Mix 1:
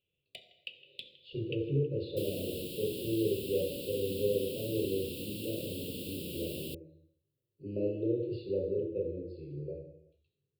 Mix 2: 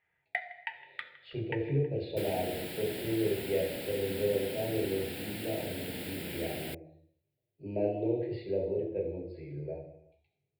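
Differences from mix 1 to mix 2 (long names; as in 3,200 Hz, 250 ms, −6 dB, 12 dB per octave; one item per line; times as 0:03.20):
first sound −6.5 dB
master: remove Chebyshev band-stop filter 560–2,700 Hz, order 5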